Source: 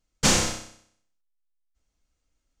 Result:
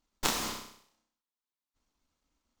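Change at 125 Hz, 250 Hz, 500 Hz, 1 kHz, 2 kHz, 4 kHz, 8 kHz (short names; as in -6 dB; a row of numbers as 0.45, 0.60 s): -17.5, -12.5, -10.5, -5.5, -9.0, -8.5, -12.0 dB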